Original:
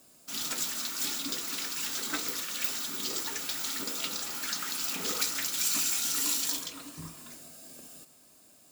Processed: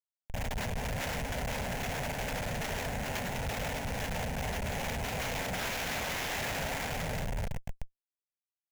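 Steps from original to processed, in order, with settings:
drawn EQ curve 170 Hz 0 dB, 290 Hz +4 dB, 660 Hz −17 dB, 3,700 Hz 0 dB
on a send: bouncing-ball delay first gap 510 ms, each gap 0.75×, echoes 5
on the sum: log-companded quantiser 4 bits
in parallel at −3 dB: downward compressor 20 to 1, threshold −38 dBFS, peak gain reduction 16 dB
on the sum: feedback delay with all-pass diffusion 545 ms, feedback 44%, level −13.5 dB
comparator with hysteresis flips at −24.5 dBFS
phaser with its sweep stopped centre 1,200 Hz, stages 6
sample-rate reduction 9,000 Hz, jitter 20%

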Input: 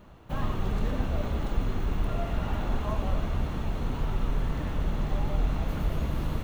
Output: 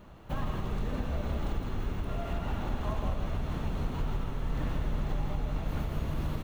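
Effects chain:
downward compressor, threshold −28 dBFS, peak gain reduction 9 dB
single-tap delay 162 ms −6 dB

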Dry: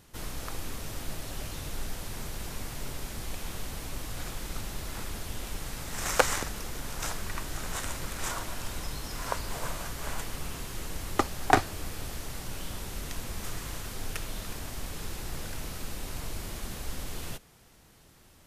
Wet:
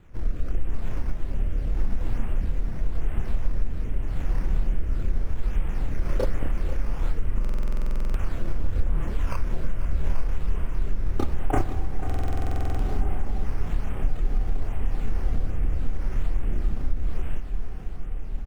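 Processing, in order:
variable-slope delta modulation 16 kbit/s
rotating-speaker cabinet horn 0.85 Hz
feedback delay with all-pass diffusion 1,495 ms, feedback 56%, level −11 dB
multi-voice chorus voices 6, 0.95 Hz, delay 29 ms, depth 3 ms
sample-and-hold swept by an LFO 8×, swing 100% 1.2 Hz
spectral tilt −2.5 dB per octave
four-comb reverb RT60 3.8 s, combs from 30 ms, DRR 15.5 dB
downward compressor 3 to 1, threshold −23 dBFS, peak gain reduction 8 dB
single-tap delay 492 ms −13.5 dB
buffer that repeats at 0:07.40/0:12.05, samples 2,048, times 15
level +6 dB

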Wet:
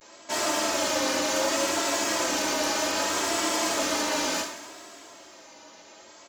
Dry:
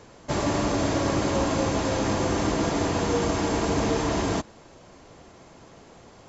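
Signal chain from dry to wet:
wavefolder on the positive side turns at −24.5 dBFS
high-pass filter 350 Hz 6 dB per octave
comb filter 3.2 ms, depth 58%
coupled-rooms reverb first 0.5 s, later 3.3 s, from −18 dB, DRR −2 dB
pitch vibrato 0.66 Hz 78 cents
spectral tilt +2.5 dB per octave
level −3.5 dB

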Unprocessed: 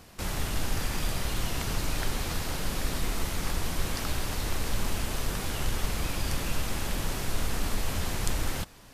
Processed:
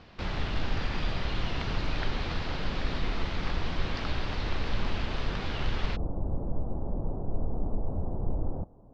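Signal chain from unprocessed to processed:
inverse Chebyshev low-pass filter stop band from 9,700 Hz, stop band 50 dB, from 0:05.95 stop band from 2,000 Hz

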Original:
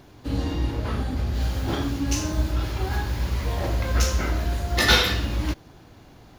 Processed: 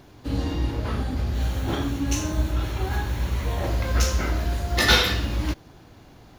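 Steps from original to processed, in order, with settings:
0:01.34–0:03.67: notch filter 4,900 Hz, Q 5.6

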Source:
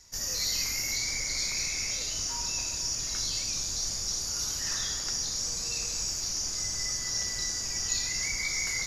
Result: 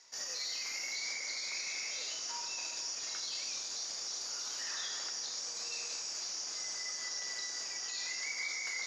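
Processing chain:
brickwall limiter −26 dBFS, peak gain reduction 9.5 dB
band-pass filter 500–5,100 Hz

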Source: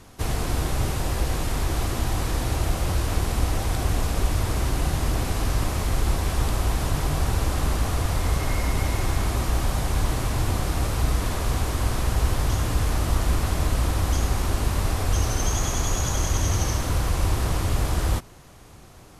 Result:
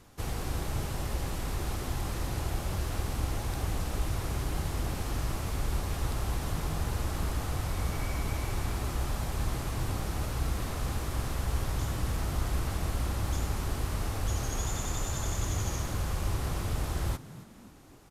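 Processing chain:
echo with shifted repeats 291 ms, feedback 46%, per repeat +72 Hz, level −17.5 dB
speed change +6%
level −8.5 dB

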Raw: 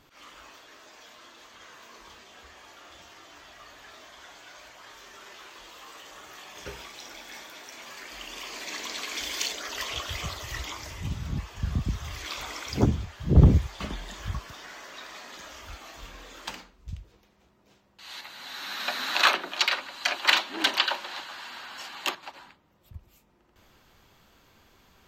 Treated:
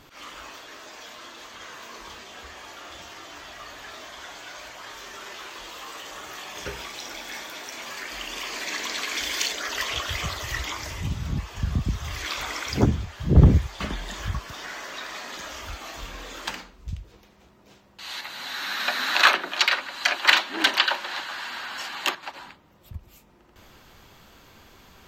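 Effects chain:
dynamic equaliser 1,700 Hz, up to +4 dB, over −46 dBFS, Q 1.9
in parallel at +1 dB: downward compressor, threshold −42 dBFS, peak gain reduction 28.5 dB
on the sum: level +1.5 dB

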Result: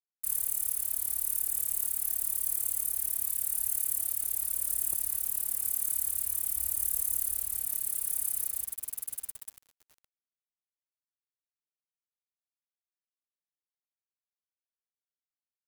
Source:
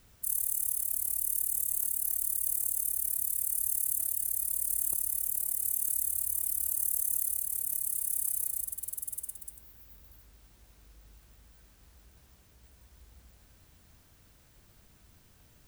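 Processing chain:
centre clipping without the shift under −43.5 dBFS
0:06.56–0:07.66: low-shelf EQ 63 Hz +11.5 dB

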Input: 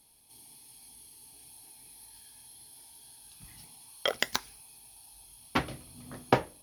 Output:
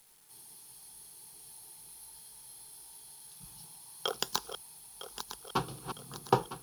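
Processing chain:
feedback delay that plays each chunk backwards 478 ms, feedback 68%, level −9.5 dB
phaser with its sweep stopped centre 400 Hz, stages 8
bit-depth reduction 10 bits, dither none
level +1 dB

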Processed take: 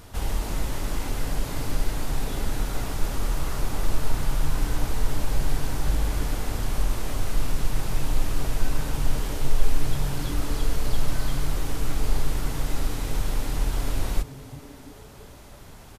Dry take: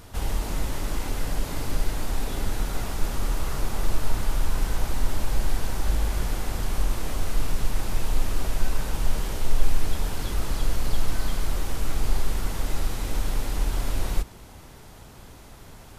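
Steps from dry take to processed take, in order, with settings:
echo with shifted repeats 337 ms, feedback 51%, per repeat −150 Hz, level −21 dB

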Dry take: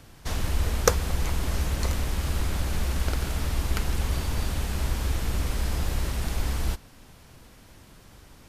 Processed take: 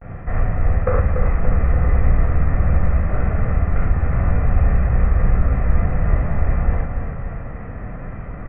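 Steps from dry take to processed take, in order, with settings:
in parallel at −7 dB: decimation without filtering 28×
on the sum: pitch vibrato 0.36 Hz 56 cents
reversed playback
downward compressor 12 to 1, threshold −30 dBFS, peak gain reduction 19 dB
reversed playback
Butterworth low-pass 2,100 Hz 48 dB per octave
comb filter 1.6 ms, depth 48%
repeating echo 288 ms, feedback 55%, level −8 dB
reverb whose tail is shaped and stops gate 130 ms flat, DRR −6 dB
level +9 dB

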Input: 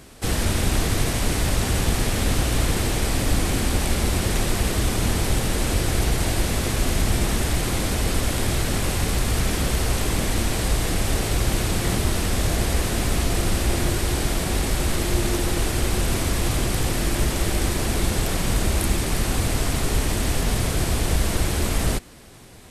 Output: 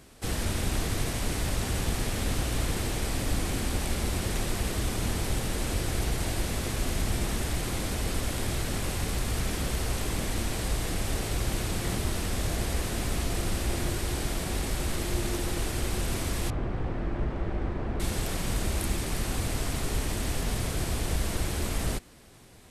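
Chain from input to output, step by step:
0:16.50–0:18.00: low-pass filter 1,400 Hz 12 dB per octave
level −7.5 dB

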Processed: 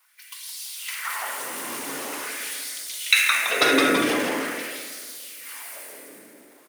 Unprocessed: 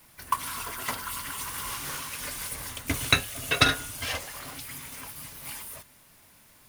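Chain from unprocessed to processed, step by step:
echo with shifted repeats 166 ms, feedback 55%, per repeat −140 Hz, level −4 dB
in parallel at −0.5 dB: downward compressor, threshold −40 dBFS, peak gain reduction 23.5 dB
on the sum: auto-filter high-pass sine 0.45 Hz 280–4,400 Hz
on a send at −4.5 dB: octave-band graphic EQ 125/250/500/1,000/2,000/4,000/8,000 Hz +3/+10/+9/−8/+10/−5/+6 dB + convolution reverb RT60 2.7 s, pre-delay 33 ms
on the sum: transient designer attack −1 dB, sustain +6 dB
multiband upward and downward expander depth 40%
level −3.5 dB

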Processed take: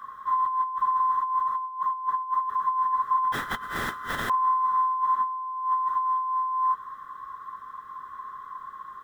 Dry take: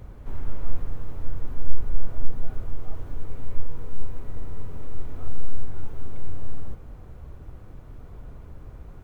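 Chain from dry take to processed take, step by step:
neighbouring bands swapped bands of 1,000 Hz
compressor whose output falls as the input rises −20 dBFS, ratio −1
0:03.32–0:04.30: every bin compressed towards the loudest bin 10 to 1
level −6.5 dB

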